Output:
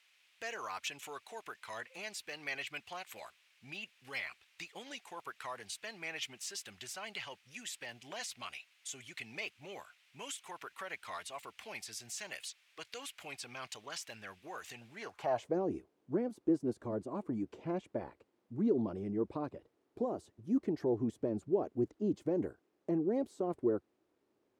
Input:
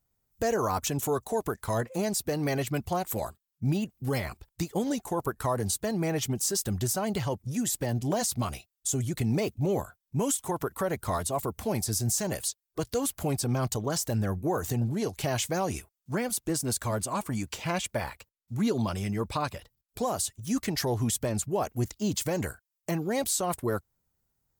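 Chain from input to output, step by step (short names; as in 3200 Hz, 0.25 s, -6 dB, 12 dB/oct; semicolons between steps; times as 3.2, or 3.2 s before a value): requantised 10-bit, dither triangular; band-pass sweep 2500 Hz -> 340 Hz, 14.91–15.58; gain +2 dB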